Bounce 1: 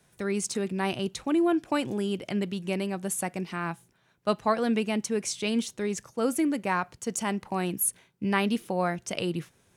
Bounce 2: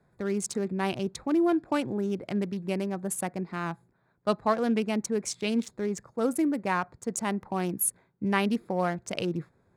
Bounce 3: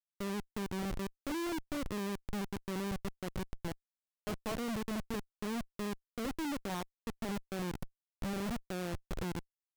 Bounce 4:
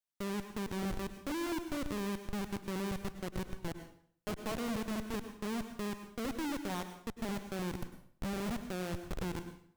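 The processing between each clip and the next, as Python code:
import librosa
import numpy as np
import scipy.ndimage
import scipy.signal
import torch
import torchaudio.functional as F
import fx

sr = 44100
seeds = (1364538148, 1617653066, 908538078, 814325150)

y1 = fx.wiener(x, sr, points=15)
y2 = scipy.ndimage.median_filter(y1, 25, mode='constant')
y2 = fx.schmitt(y2, sr, flips_db=-29.5)
y2 = y2 * librosa.db_to_amplitude(-5.5)
y3 = fx.rev_plate(y2, sr, seeds[0], rt60_s=0.57, hf_ratio=0.9, predelay_ms=90, drr_db=9.0)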